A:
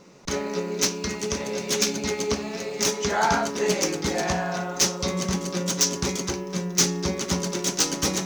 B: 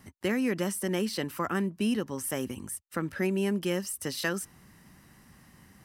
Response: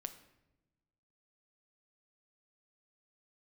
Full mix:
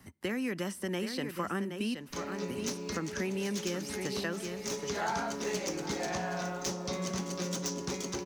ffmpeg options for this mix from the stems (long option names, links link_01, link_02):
-filter_complex "[0:a]adelay=1850,volume=-9dB,asplit=3[link_01][link_02][link_03];[link_02]volume=-5.5dB[link_04];[link_03]volume=-15.5dB[link_05];[1:a]acrossover=split=6100[link_06][link_07];[link_07]acompressor=threshold=-47dB:ratio=4:attack=1:release=60[link_08];[link_06][link_08]amix=inputs=2:normalize=0,volume=-2.5dB,asplit=3[link_09][link_10][link_11];[link_09]atrim=end=1.95,asetpts=PTS-STARTPTS,afade=type=out:start_time=1.946:duration=0.004:curve=hsin[link_12];[link_10]atrim=start=1.95:end=2.48,asetpts=PTS-STARTPTS,volume=0[link_13];[link_11]atrim=start=2.48,asetpts=PTS-STARTPTS,afade=type=in:duration=0.004:curve=hsin[link_14];[link_12][link_13][link_14]concat=n=3:v=0:a=1,asplit=4[link_15][link_16][link_17][link_18];[link_16]volume=-14.5dB[link_19];[link_17]volume=-8dB[link_20];[link_18]apad=whole_len=445556[link_21];[link_01][link_21]sidechaincompress=threshold=-39dB:ratio=8:attack=50:release=915[link_22];[2:a]atrim=start_sample=2205[link_23];[link_04][link_19]amix=inputs=2:normalize=0[link_24];[link_24][link_23]afir=irnorm=-1:irlink=0[link_25];[link_05][link_20]amix=inputs=2:normalize=0,aecho=0:1:772:1[link_26];[link_22][link_15][link_25][link_26]amix=inputs=4:normalize=0,acrossover=split=150|1100[link_27][link_28][link_29];[link_27]acompressor=threshold=-48dB:ratio=4[link_30];[link_28]acompressor=threshold=-33dB:ratio=4[link_31];[link_29]acompressor=threshold=-37dB:ratio=4[link_32];[link_30][link_31][link_32]amix=inputs=3:normalize=0"